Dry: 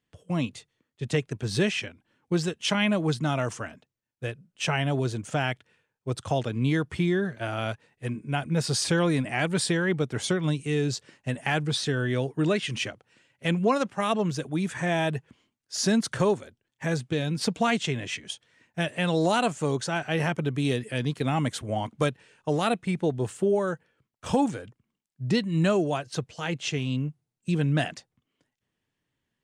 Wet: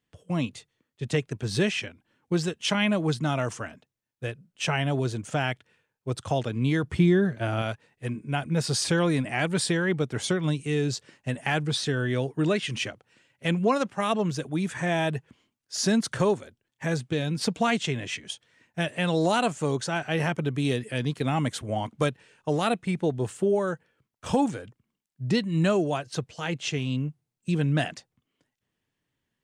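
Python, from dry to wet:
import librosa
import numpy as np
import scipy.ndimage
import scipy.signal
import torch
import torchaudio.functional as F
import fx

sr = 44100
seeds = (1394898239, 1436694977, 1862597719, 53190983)

y = fx.low_shelf(x, sr, hz=440.0, db=6.5, at=(6.83, 7.62))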